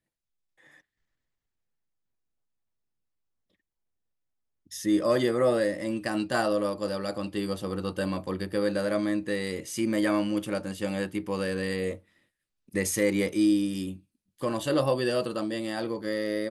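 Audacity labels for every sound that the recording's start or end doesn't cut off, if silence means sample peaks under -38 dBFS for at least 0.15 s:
4.720000	11.960000	sound
12.750000	13.960000	sound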